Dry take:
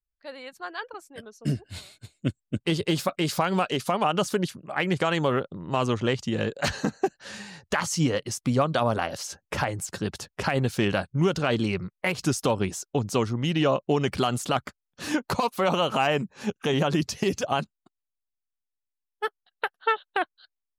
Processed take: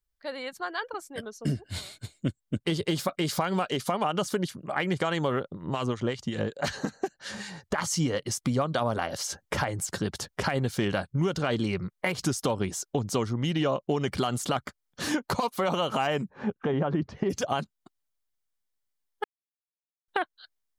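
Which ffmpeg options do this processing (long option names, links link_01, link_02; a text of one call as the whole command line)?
ffmpeg -i in.wav -filter_complex "[0:a]asettb=1/sr,asplit=3[link_01][link_02][link_03];[link_01]atrim=end=5.514[link_04];[link_02]atrim=start=5.51:end=7.78,asetpts=PTS-STARTPTS,afade=type=in:duration=0.004:curve=qsin,afade=type=out:start_time=2.266:duration=0.004:curve=qsin,acrossover=split=1300[link_05][link_06];[link_05]aeval=exprs='val(0)*(1-0.7/2+0.7/2*cos(2*PI*5.4*n/s))':channel_layout=same[link_07];[link_06]aeval=exprs='val(0)*(1-0.7/2-0.7/2*cos(2*PI*5.4*n/s))':channel_layout=same[link_08];[link_07][link_08]amix=inputs=2:normalize=0[link_09];[link_03]atrim=start=7.776[link_10];[link_04][link_09]acrossfade=duration=0.004:curve1=hsin:curve2=qsin[link_11];[link_11][link_10]acrossfade=duration=0.004:curve1=qsin:curve2=hsin,asplit=3[link_12][link_13][link_14];[link_12]afade=type=out:start_time=16.29:duration=0.02[link_15];[link_13]lowpass=1500,afade=type=in:start_time=16.29:duration=0.02,afade=type=out:start_time=17.29:duration=0.02[link_16];[link_14]afade=type=in:start_time=17.29:duration=0.02[link_17];[link_15][link_16][link_17]amix=inputs=3:normalize=0,asplit=3[link_18][link_19][link_20];[link_18]atrim=end=19.24,asetpts=PTS-STARTPTS,afade=type=out:start_time=19.236:duration=0.004:curve=hsin[link_21];[link_19]atrim=start=19.24:end=20.08,asetpts=PTS-STARTPTS,volume=0[link_22];[link_20]atrim=start=20.08,asetpts=PTS-STARTPTS,afade=type=in:duration=0.004:curve=hsin[link_23];[link_21][link_22][link_23]concat=n=3:v=0:a=1,bandreject=frequency=2600:width=11,acompressor=threshold=-36dB:ratio=2,volume=5.5dB" out.wav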